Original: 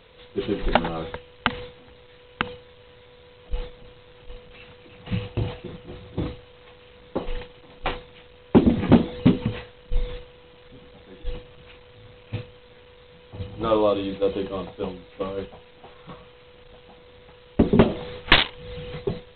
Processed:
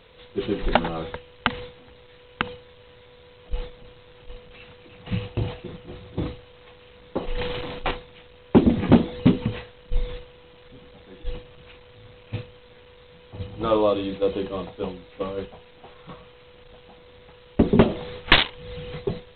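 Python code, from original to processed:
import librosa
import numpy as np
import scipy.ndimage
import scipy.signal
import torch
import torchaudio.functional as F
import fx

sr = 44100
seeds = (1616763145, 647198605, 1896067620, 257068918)

y = fx.sustainer(x, sr, db_per_s=24.0, at=(7.2, 7.91))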